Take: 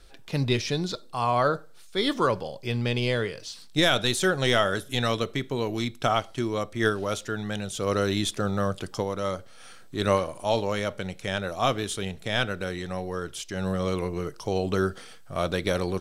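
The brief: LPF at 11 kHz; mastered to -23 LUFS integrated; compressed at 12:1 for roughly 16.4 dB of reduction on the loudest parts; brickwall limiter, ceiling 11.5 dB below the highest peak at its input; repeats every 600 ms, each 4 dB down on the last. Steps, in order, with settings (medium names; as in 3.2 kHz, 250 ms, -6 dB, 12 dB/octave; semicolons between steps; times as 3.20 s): low-pass 11 kHz; compression 12:1, threshold -34 dBFS; peak limiter -31.5 dBFS; feedback delay 600 ms, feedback 63%, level -4 dB; trim +17.5 dB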